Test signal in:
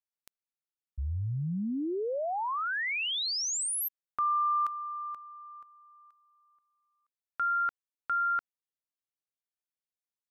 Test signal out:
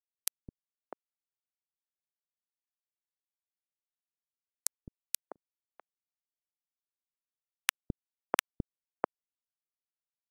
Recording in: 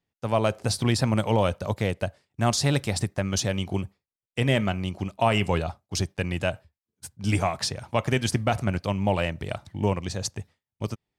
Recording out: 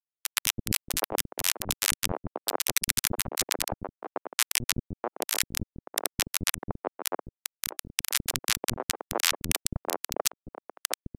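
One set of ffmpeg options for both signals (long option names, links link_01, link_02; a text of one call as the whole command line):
ffmpeg -i in.wav -filter_complex "[0:a]aemphasis=mode=production:type=75fm,bandreject=frequency=68.93:width_type=h:width=4,bandreject=frequency=137.86:width_type=h:width=4,bandreject=frequency=206.79:width_type=h:width=4,bandreject=frequency=275.72:width_type=h:width=4,bandreject=frequency=344.65:width_type=h:width=4,bandreject=frequency=413.58:width_type=h:width=4,bandreject=frequency=482.51:width_type=h:width=4,bandreject=frequency=551.44:width_type=h:width=4,bandreject=frequency=620.37:width_type=h:width=4,bandreject=frequency=689.3:width_type=h:width=4,bandreject=frequency=758.23:width_type=h:width=4,bandreject=frequency=827.16:width_type=h:width=4,bandreject=frequency=896.09:width_type=h:width=4,bandreject=frequency=965.02:width_type=h:width=4,acrossover=split=6100[link_01][link_02];[link_02]acompressor=threshold=-32dB:ratio=4:attack=1:release=60[link_03];[link_01][link_03]amix=inputs=2:normalize=0,equalizer=frequency=10000:width_type=o:width=1.8:gain=8.5,areverse,acompressor=threshold=-35dB:ratio=10:attack=1:release=204:knee=6:detection=peak,areverse,acrusher=bits=4:mix=0:aa=0.000001,acrossover=split=300|1000[link_04][link_05][link_06];[link_04]adelay=210[link_07];[link_05]adelay=650[link_08];[link_07][link_08][link_06]amix=inputs=3:normalize=0,alimiter=level_in=30dB:limit=-1dB:release=50:level=0:latency=1,volume=-1dB" -ar 32000 -c:a aac -b:a 48k out.aac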